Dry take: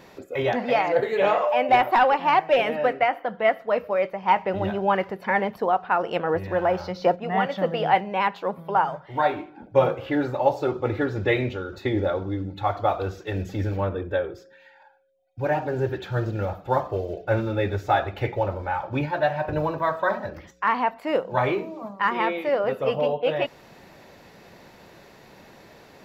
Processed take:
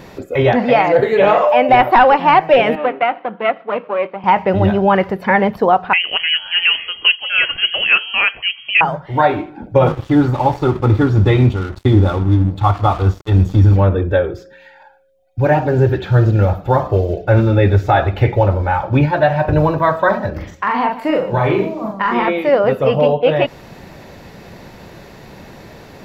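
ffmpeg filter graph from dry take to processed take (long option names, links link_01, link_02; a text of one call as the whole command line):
ffmpeg -i in.wav -filter_complex "[0:a]asettb=1/sr,asplit=3[link_01][link_02][link_03];[link_01]atrim=end=2.754[link_04];[link_02]atrim=start=2.75:end=4.24,asetpts=PTS-STARTPTS,afade=type=in:duration=0.004:curve=qsin,afade=type=out:start_time=1.486:duration=0.004:curve=qsin,aeval=exprs='if(lt(val(0),0),0.447*val(0),val(0))':channel_layout=same,highpass=frequency=220:width=0.5412,highpass=frequency=220:width=1.3066,equalizer=frequency=260:width_type=q:width=4:gain=-3,equalizer=frequency=480:width_type=q:width=4:gain=-4,equalizer=frequency=1800:width_type=q:width=4:gain=-6,lowpass=frequency=3000:width=0.5412,lowpass=frequency=3000:width=1.3066,bandreject=frequency=630:width=7.9[link_05];[link_03]atrim=start=4.236[link_06];[link_04][link_05]acrossfade=duration=0.004:curve1=hsin:curve2=qsin[link_07];[link_07][link_06]acrossfade=duration=0.004:curve1=qsin:curve2=hsin,asettb=1/sr,asplit=3[link_08][link_09][link_10];[link_08]atrim=end=5.934[link_11];[link_09]atrim=start=5.93:end=8.81,asetpts=PTS-STARTPTS,afade=type=in:duration=0.004:curve=qsin,afade=type=out:start_time=2.876:duration=0.004:curve=qsin,highpass=57,equalizer=frequency=110:width=1:gain=-14.5,lowpass=frequency=2900:width_type=q:width=0.5098,lowpass=frequency=2900:width_type=q:width=0.6013,lowpass=frequency=2900:width_type=q:width=0.9,lowpass=frequency=2900:width_type=q:width=2.563,afreqshift=-3400[link_12];[link_10]atrim=start=8.806[link_13];[link_11][link_12]acrossfade=duration=0.004:curve1=hsin:curve2=qsin[link_14];[link_14][link_13]acrossfade=duration=0.004:curve1=qsin:curve2=hsin,asettb=1/sr,asplit=3[link_15][link_16][link_17];[link_15]atrim=end=9.874[link_18];[link_16]atrim=start=9.87:end=13.76,asetpts=PTS-STARTPTS,afade=type=in:duration=0.004:curve=qsin,afade=type=out:start_time=3.886:duration=0.004:curve=qsin,equalizer=frequency=2200:width_type=o:width=0.31:gain=-13.5,aecho=1:1:0.9:0.59,atrim=end_sample=171549,aeval=exprs='sgn(val(0))*max(abs(val(0))-0.00944,0)':channel_layout=same[link_19];[link_17]atrim=start=13.756[link_20];[link_18][link_19]acrossfade=duration=0.004:curve1=hsin:curve2=qsin[link_21];[link_21][link_20]acrossfade=duration=0.004:curve1=qsin:curve2=hsin,asettb=1/sr,asplit=3[link_22][link_23][link_24];[link_22]atrim=end=20.324[link_25];[link_23]atrim=start=20.32:end=22.28,asetpts=PTS-STARTPTS,afade=type=in:duration=0.004:curve=qsin,afade=type=out:start_time=1.956:duration=0.004:curve=qsin,acompressor=threshold=-23dB:ratio=6:attack=3.2:release=140:knee=1:detection=peak,aecho=1:1:42|147:0.668|0.188,atrim=end_sample=86436[link_26];[link_24]atrim=start=22.276[link_27];[link_25][link_26]acrossfade=duration=0.004:curve1=hsin:curve2=qsin[link_28];[link_28][link_27]acrossfade=duration=0.004:curve1=qsin:curve2=hsin,acrossover=split=4300[link_29][link_30];[link_30]acompressor=threshold=-55dB:ratio=4:attack=1:release=60[link_31];[link_29][link_31]amix=inputs=2:normalize=0,lowshelf=frequency=190:gain=10,alimiter=level_in=10dB:limit=-1dB:release=50:level=0:latency=1,volume=-1dB" out.wav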